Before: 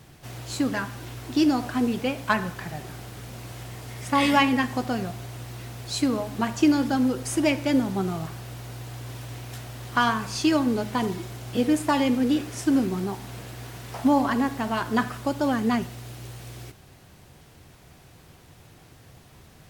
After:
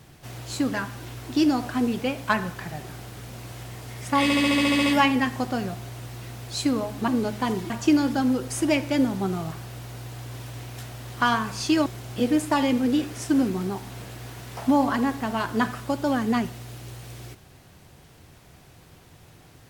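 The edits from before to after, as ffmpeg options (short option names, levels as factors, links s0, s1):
-filter_complex "[0:a]asplit=13[s0][s1][s2][s3][s4][s5][s6][s7][s8][s9][s10][s11][s12];[s0]atrim=end=4.302[s13];[s1]atrim=start=4.228:end=4.302[s14];[s2]atrim=start=4.228:end=4.302[s15];[s3]atrim=start=4.228:end=4.302[s16];[s4]atrim=start=4.228:end=4.302[s17];[s5]atrim=start=4.228:end=4.302[s18];[s6]atrim=start=4.228:end=4.302[s19];[s7]atrim=start=4.228:end=4.302[s20];[s8]atrim=start=4.228:end=4.302[s21];[s9]atrim=start=4.228:end=6.452[s22];[s10]atrim=start=10.608:end=11.232[s23];[s11]atrim=start=6.448:end=10.612[s24];[s12]atrim=start=11.228[s25];[s13][s14]acrossfade=d=0.004:c1=hsin:c2=hsin[s26];[s26][s15]acrossfade=d=0.004:c1=hsin:c2=hsin[s27];[s27][s16]acrossfade=d=0.004:c1=hsin:c2=hsin[s28];[s28][s17]acrossfade=d=0.004:c1=hsin:c2=hsin[s29];[s29][s18]acrossfade=d=0.004:c1=hsin:c2=hsin[s30];[s30][s19]acrossfade=d=0.004:c1=hsin:c2=hsin[s31];[s31][s20]acrossfade=d=0.004:c1=hsin:c2=hsin[s32];[s32][s21]acrossfade=d=0.004:c1=hsin:c2=hsin[s33];[s33][s22]acrossfade=d=0.004:c1=hsin:c2=hsin[s34];[s34][s23]acrossfade=d=0.004:c1=hsin:c2=hsin[s35];[s35][s24]acrossfade=d=0.004:c1=hsin:c2=hsin[s36];[s36][s25]acrossfade=d=0.004:c1=hsin:c2=hsin"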